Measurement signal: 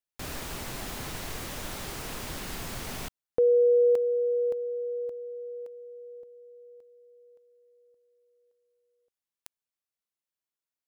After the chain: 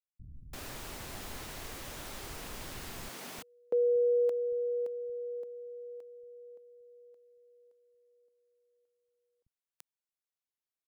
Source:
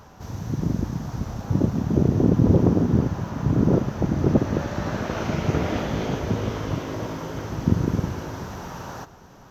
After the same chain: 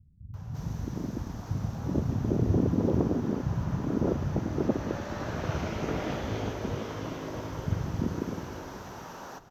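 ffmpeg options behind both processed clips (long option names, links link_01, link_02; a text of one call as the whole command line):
ffmpeg -i in.wav -filter_complex "[0:a]acrossover=split=170[link_01][link_02];[link_02]adelay=340[link_03];[link_01][link_03]amix=inputs=2:normalize=0,volume=-6dB" out.wav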